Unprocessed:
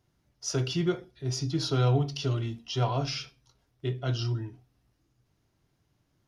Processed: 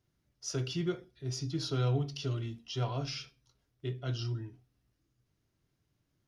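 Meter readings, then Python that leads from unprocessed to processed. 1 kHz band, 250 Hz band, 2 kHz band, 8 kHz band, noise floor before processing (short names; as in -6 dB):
-8.5 dB, -5.5 dB, -6.0 dB, -5.5 dB, -74 dBFS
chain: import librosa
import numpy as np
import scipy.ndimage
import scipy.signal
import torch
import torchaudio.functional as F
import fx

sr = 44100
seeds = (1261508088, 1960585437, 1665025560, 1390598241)

y = fx.peak_eq(x, sr, hz=830.0, db=-5.0, octaves=0.75)
y = F.gain(torch.from_numpy(y), -5.5).numpy()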